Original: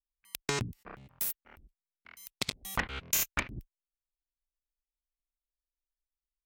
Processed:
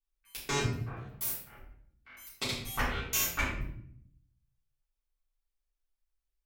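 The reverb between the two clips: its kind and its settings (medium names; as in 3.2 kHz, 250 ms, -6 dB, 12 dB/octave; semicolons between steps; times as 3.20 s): simulated room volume 120 m³, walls mixed, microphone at 3.5 m; trim -10.5 dB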